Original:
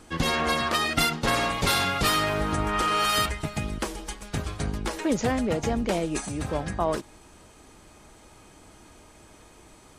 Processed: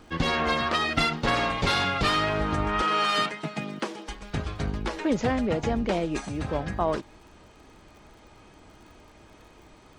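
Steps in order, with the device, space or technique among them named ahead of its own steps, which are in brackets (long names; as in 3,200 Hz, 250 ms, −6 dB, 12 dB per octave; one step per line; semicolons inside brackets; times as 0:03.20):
lo-fi chain (low-pass filter 4,600 Hz 12 dB per octave; tape wow and flutter 23 cents; surface crackle 48 per second −47 dBFS)
0:02.82–0:04.09: Butterworth high-pass 150 Hz 36 dB per octave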